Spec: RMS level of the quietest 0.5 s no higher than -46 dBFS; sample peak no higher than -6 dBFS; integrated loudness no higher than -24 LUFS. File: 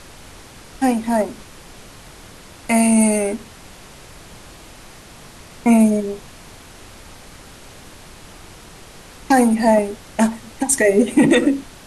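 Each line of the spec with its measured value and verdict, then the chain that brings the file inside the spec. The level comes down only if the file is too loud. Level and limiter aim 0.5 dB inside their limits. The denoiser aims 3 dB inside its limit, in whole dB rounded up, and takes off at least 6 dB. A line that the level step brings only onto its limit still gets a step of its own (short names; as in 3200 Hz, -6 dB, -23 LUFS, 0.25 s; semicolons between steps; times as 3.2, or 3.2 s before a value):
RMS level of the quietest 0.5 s -41 dBFS: fail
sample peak -4.5 dBFS: fail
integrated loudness -17.0 LUFS: fail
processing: gain -7.5 dB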